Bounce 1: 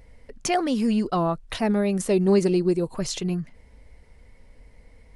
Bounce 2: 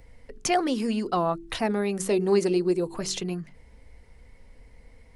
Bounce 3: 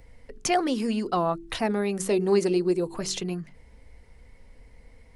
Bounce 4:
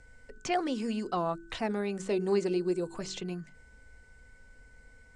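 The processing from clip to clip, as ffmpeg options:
ffmpeg -i in.wav -filter_complex "[0:a]bandreject=frequency=600:width=15,bandreject=frequency=47.88:width_type=h:width=4,bandreject=frequency=95.76:width_type=h:width=4,bandreject=frequency=143.64:width_type=h:width=4,bandreject=frequency=191.52:width_type=h:width=4,bandreject=frequency=239.4:width_type=h:width=4,bandreject=frequency=287.28:width_type=h:width=4,bandreject=frequency=335.16:width_type=h:width=4,bandreject=frequency=383.04:width_type=h:width=4,bandreject=frequency=430.92:width_type=h:width=4,acrossover=split=250|5600[link_01][link_02][link_03];[link_01]acompressor=threshold=-36dB:ratio=6[link_04];[link_04][link_02][link_03]amix=inputs=3:normalize=0" out.wav
ffmpeg -i in.wav -af anull out.wav
ffmpeg -i in.wav -filter_complex "[0:a]acrossover=split=4300[link_01][link_02];[link_02]acompressor=threshold=-53dB:ratio=4:attack=1:release=60[link_03];[link_01][link_03]amix=inputs=2:normalize=0,lowpass=frequency=7700:width_type=q:width=3.8,aeval=exprs='val(0)+0.00224*sin(2*PI*1500*n/s)':channel_layout=same,volume=-6dB" out.wav

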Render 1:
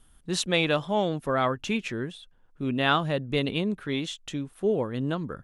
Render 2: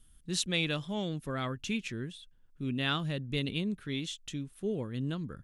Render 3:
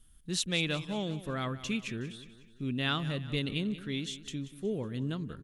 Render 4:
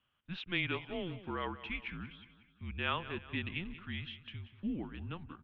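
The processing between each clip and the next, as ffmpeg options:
ffmpeg -i in.wav -af "equalizer=frequency=780:width_type=o:width=2.3:gain=-13.5,volume=-1.5dB" out.wav
ffmpeg -i in.wav -af "aecho=1:1:184|368|552|736|920:0.178|0.0871|0.0427|0.0209|0.0103" out.wav
ffmpeg -i in.wav -af "highpass=frequency=310:width_type=q:width=0.5412,highpass=frequency=310:width_type=q:width=1.307,lowpass=frequency=3200:width_type=q:width=0.5176,lowpass=frequency=3200:width_type=q:width=0.7071,lowpass=frequency=3200:width_type=q:width=1.932,afreqshift=-180,volume=-1dB" out.wav

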